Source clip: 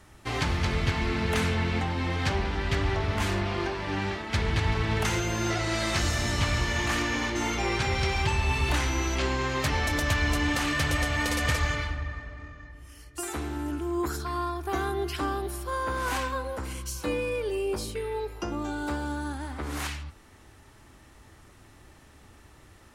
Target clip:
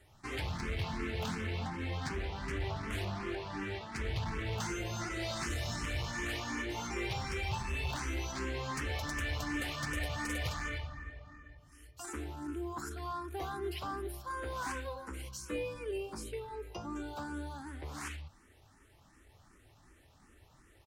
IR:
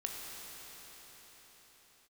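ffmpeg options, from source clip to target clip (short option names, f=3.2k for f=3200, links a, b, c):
-filter_complex "[0:a]atempo=1.1,volume=23dB,asoftclip=hard,volume=-23dB,asplit=2[a][b];[b]afreqshift=2.7[c];[a][c]amix=inputs=2:normalize=1,volume=-6dB"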